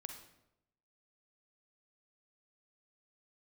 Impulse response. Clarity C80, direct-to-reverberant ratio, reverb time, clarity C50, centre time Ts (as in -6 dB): 9.0 dB, 4.5 dB, 0.85 s, 5.5 dB, 24 ms